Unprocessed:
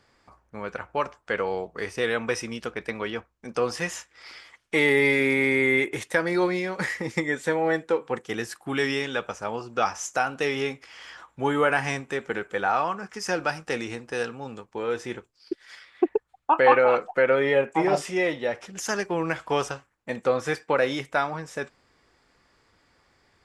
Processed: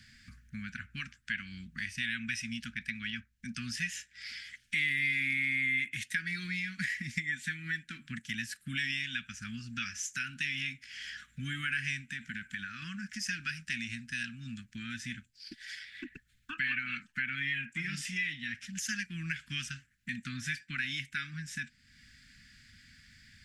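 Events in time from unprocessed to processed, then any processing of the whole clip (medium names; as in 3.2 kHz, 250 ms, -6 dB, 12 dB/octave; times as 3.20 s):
12.00–12.82 s: compression 2:1, threshold -30 dBFS
whole clip: Chebyshev band-stop 240–1600 Hz, order 4; dynamic bell 2.6 kHz, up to +7 dB, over -42 dBFS, Q 1.5; compression 2:1, threshold -54 dBFS; trim +8.5 dB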